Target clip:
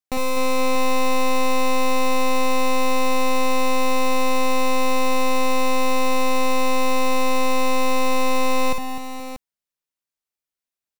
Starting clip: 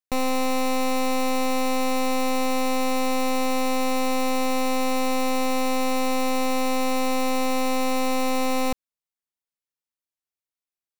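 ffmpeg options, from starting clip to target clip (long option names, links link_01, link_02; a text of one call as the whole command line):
ffmpeg -i in.wav -af "aecho=1:1:51|56|251|471|636:0.266|0.531|0.335|0.141|0.355" out.wav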